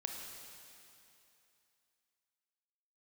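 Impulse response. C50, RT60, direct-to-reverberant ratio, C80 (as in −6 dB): 2.5 dB, 2.8 s, 1.5 dB, 3.5 dB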